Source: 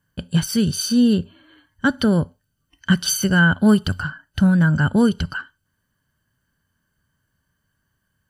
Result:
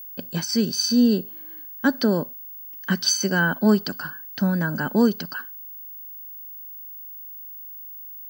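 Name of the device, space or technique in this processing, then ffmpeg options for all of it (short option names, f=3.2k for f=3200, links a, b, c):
old television with a line whistle: -af "highpass=f=220:w=0.5412,highpass=f=220:w=1.3066,equalizer=f=1.4k:t=q:w=4:g=-7,equalizer=f=3.1k:t=q:w=4:g=-10,equalizer=f=5.1k:t=q:w=4:g=7,lowpass=f=6.9k:w=0.5412,lowpass=f=6.9k:w=1.3066,aeval=exprs='val(0)+0.0158*sin(2*PI*15625*n/s)':c=same"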